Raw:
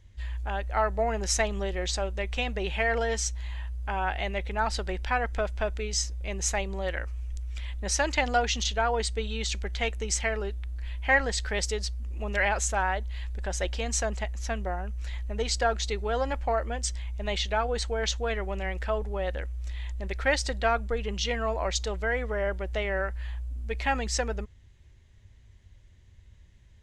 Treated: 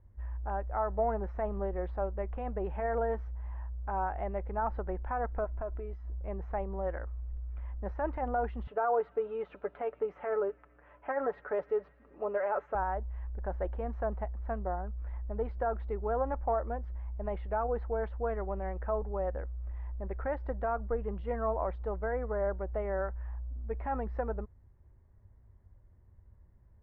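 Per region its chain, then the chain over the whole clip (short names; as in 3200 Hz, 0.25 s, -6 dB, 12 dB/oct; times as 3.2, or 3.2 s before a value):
5.44–6.19 compressor, threshold -31 dBFS + comb 3 ms, depth 43%
8.67–12.75 speaker cabinet 220–8300 Hz, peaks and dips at 410 Hz +4 dB, 600 Hz +6 dB, 1300 Hz +7 dB, 2700 Hz +5 dB, 4900 Hz -6 dB + comb 6.9 ms, depth 50% + thin delay 0.111 s, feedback 79%, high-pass 2600 Hz, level -20 dB
whole clip: low shelf 480 Hz -4.5 dB; limiter -20 dBFS; LPF 1200 Hz 24 dB/oct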